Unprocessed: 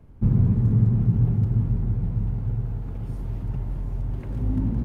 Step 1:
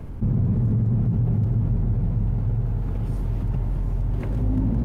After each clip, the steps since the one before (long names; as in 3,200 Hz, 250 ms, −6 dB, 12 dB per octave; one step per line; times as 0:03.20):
dynamic equaliser 600 Hz, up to +5 dB, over −46 dBFS, Q 2
brickwall limiter −15 dBFS, peak gain reduction 7 dB
envelope flattener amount 50%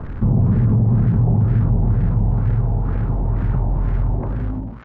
fade-out on the ending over 0.80 s
surface crackle 430 per second −34 dBFS
auto-filter low-pass sine 2.1 Hz 780–1,700 Hz
level +5.5 dB